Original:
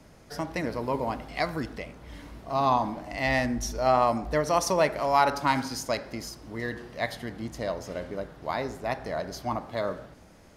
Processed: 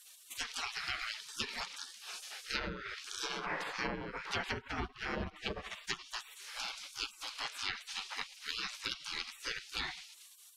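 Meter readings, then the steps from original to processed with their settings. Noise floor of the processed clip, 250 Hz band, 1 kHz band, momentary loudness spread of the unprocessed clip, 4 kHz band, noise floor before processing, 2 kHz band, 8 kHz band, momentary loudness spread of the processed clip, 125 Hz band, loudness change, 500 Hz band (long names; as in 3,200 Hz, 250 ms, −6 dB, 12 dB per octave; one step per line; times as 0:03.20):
−58 dBFS, −16.0 dB, −17.0 dB, 14 LU, +1.0 dB, −53 dBFS, −5.5 dB, −6.0 dB, 7 LU, −14.5 dB, −11.0 dB, −19.5 dB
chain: gate on every frequency bin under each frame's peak −30 dB weak
treble cut that deepens with the level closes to 730 Hz, closed at −41.5 dBFS
level +15.5 dB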